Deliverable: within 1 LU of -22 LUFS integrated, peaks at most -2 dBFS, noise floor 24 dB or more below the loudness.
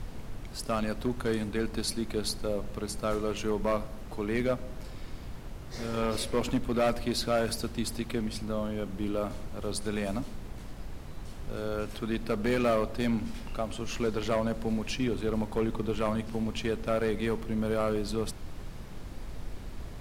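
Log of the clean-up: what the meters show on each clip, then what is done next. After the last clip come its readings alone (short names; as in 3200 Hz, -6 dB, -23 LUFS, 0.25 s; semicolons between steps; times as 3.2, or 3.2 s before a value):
clipped 0.8%; flat tops at -21.0 dBFS; noise floor -42 dBFS; noise floor target -56 dBFS; loudness -32.0 LUFS; peak -21.0 dBFS; loudness target -22.0 LUFS
-> clip repair -21 dBFS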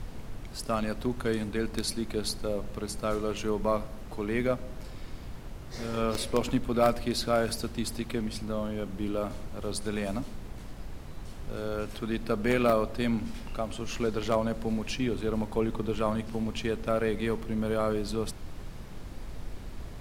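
clipped 0.0%; noise floor -42 dBFS; noise floor target -55 dBFS
-> noise print and reduce 13 dB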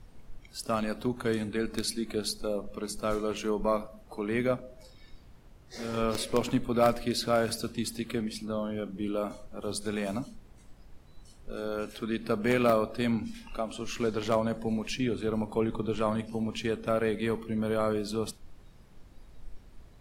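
noise floor -55 dBFS; loudness -31.0 LUFS; peak -11.5 dBFS; loudness target -22.0 LUFS
-> gain +9 dB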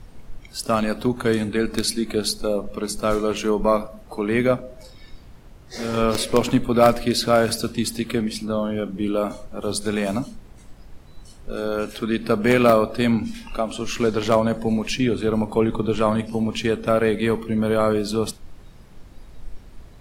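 loudness -22.0 LUFS; peak -2.5 dBFS; noise floor -46 dBFS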